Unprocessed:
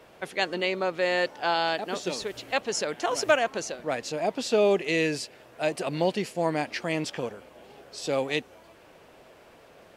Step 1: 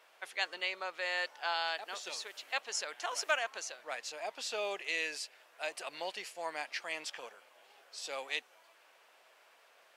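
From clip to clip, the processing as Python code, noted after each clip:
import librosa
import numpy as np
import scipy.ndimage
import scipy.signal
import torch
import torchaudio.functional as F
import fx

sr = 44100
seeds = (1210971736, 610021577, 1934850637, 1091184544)

y = scipy.signal.sosfilt(scipy.signal.butter(2, 970.0, 'highpass', fs=sr, output='sos'), x)
y = y * librosa.db_to_amplitude(-5.5)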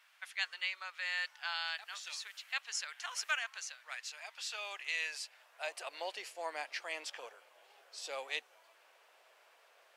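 y = fx.filter_sweep_highpass(x, sr, from_hz=1500.0, to_hz=410.0, start_s=4.38, end_s=6.26, q=1.0)
y = y * librosa.db_to_amplitude(-2.0)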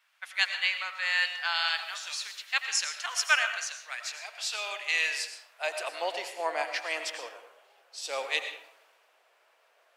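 y = x + 10.0 ** (-18.5 / 20.0) * np.pad(x, (int(85 * sr / 1000.0), 0))[:len(x)]
y = fx.rev_freeverb(y, sr, rt60_s=0.86, hf_ratio=0.55, predelay_ms=70, drr_db=6.5)
y = fx.band_widen(y, sr, depth_pct=40)
y = y * librosa.db_to_amplitude(8.5)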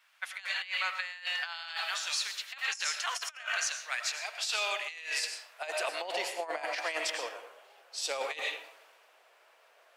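y = fx.over_compress(x, sr, threshold_db=-34.0, ratio=-0.5)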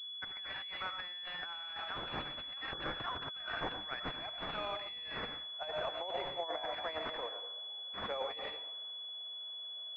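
y = fx.pwm(x, sr, carrier_hz=3400.0)
y = y * librosa.db_to_amplitude(-3.0)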